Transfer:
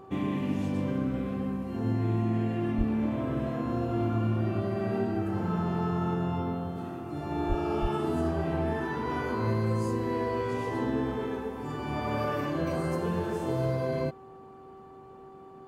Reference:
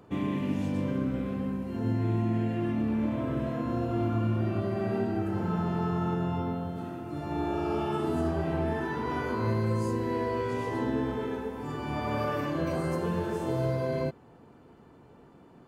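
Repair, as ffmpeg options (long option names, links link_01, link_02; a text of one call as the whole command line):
ffmpeg -i in.wav -filter_complex "[0:a]bandreject=frequency=384.8:width_type=h:width=4,bandreject=frequency=769.6:width_type=h:width=4,bandreject=frequency=1154.4:width_type=h:width=4,asplit=3[link_01][link_02][link_03];[link_01]afade=type=out:start_time=2.77:duration=0.02[link_04];[link_02]highpass=frequency=140:width=0.5412,highpass=frequency=140:width=1.3066,afade=type=in:start_time=2.77:duration=0.02,afade=type=out:start_time=2.89:duration=0.02[link_05];[link_03]afade=type=in:start_time=2.89:duration=0.02[link_06];[link_04][link_05][link_06]amix=inputs=3:normalize=0,asplit=3[link_07][link_08][link_09];[link_07]afade=type=out:start_time=7.48:duration=0.02[link_10];[link_08]highpass=frequency=140:width=0.5412,highpass=frequency=140:width=1.3066,afade=type=in:start_time=7.48:duration=0.02,afade=type=out:start_time=7.6:duration=0.02[link_11];[link_09]afade=type=in:start_time=7.6:duration=0.02[link_12];[link_10][link_11][link_12]amix=inputs=3:normalize=0,asplit=3[link_13][link_14][link_15];[link_13]afade=type=out:start_time=7.81:duration=0.02[link_16];[link_14]highpass=frequency=140:width=0.5412,highpass=frequency=140:width=1.3066,afade=type=in:start_time=7.81:duration=0.02,afade=type=out:start_time=7.93:duration=0.02[link_17];[link_15]afade=type=in:start_time=7.93:duration=0.02[link_18];[link_16][link_17][link_18]amix=inputs=3:normalize=0" out.wav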